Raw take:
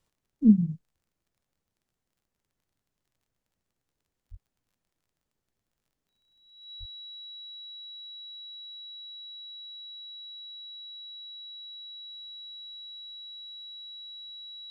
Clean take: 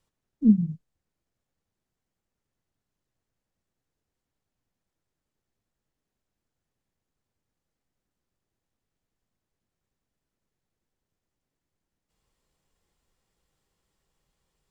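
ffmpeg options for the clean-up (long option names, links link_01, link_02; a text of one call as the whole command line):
ffmpeg -i in.wav -filter_complex "[0:a]adeclick=threshold=4,bandreject=frequency=3900:width=30,asplit=3[link_01][link_02][link_03];[link_01]afade=type=out:start_time=4.3:duration=0.02[link_04];[link_02]highpass=frequency=140:width=0.5412,highpass=frequency=140:width=1.3066,afade=type=in:start_time=4.3:duration=0.02,afade=type=out:start_time=4.42:duration=0.02[link_05];[link_03]afade=type=in:start_time=4.42:duration=0.02[link_06];[link_04][link_05][link_06]amix=inputs=3:normalize=0,asplit=3[link_07][link_08][link_09];[link_07]afade=type=out:start_time=6.79:duration=0.02[link_10];[link_08]highpass=frequency=140:width=0.5412,highpass=frequency=140:width=1.3066,afade=type=in:start_time=6.79:duration=0.02,afade=type=out:start_time=6.91:duration=0.02[link_11];[link_09]afade=type=in:start_time=6.91:duration=0.02[link_12];[link_10][link_11][link_12]amix=inputs=3:normalize=0" out.wav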